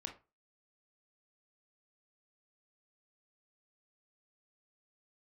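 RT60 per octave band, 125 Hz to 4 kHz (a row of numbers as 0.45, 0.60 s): 0.30, 0.25, 0.30, 0.30, 0.25, 0.20 s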